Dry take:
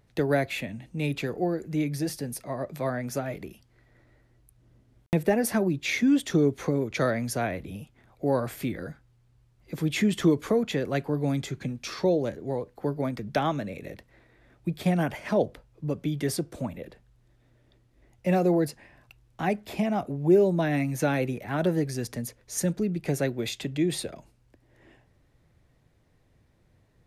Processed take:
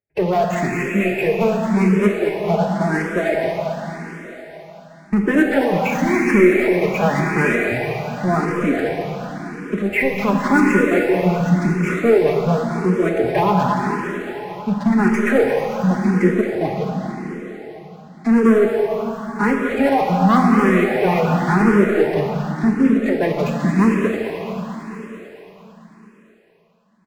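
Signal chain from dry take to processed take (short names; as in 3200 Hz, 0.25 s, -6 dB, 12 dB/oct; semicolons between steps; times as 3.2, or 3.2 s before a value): HPF 59 Hz 12 dB/oct; gate with hold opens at -53 dBFS; steep low-pass 2500 Hz 72 dB/oct; reverb removal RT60 0.7 s; dynamic EQ 390 Hz, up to +6 dB, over -42 dBFS, Q 5.4; comb 6.1 ms, depth 56%; sample leveller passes 3; limiter -13.5 dBFS, peak gain reduction 7.5 dB; formant-preserving pitch shift +4 st; on a send: thinning echo 0.223 s, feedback 70%, high-pass 620 Hz, level -7 dB; on the sum: plate-style reverb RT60 4.1 s, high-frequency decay 0.95×, DRR 0 dB; endless phaser +0.91 Hz; gain +4.5 dB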